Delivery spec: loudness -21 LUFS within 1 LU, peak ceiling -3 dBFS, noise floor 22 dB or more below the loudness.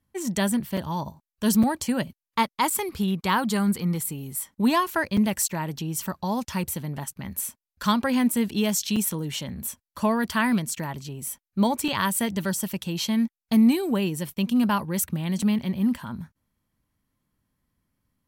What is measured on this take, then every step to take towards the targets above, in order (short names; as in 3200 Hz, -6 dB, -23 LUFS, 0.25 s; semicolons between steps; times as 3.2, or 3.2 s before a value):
dropouts 7; longest dropout 5.0 ms; loudness -25.5 LUFS; peak -10.0 dBFS; loudness target -21.0 LUFS
-> interpolate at 0.77/1.63/2.7/5.17/8.96/11.88/15.42, 5 ms; gain +4.5 dB